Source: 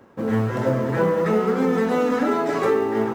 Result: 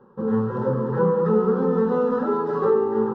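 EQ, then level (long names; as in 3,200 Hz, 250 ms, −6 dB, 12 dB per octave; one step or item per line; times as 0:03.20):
high-frequency loss of the air 340 metres
parametric band 2,900 Hz −5.5 dB 1.6 octaves
phaser with its sweep stopped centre 440 Hz, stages 8
+2.5 dB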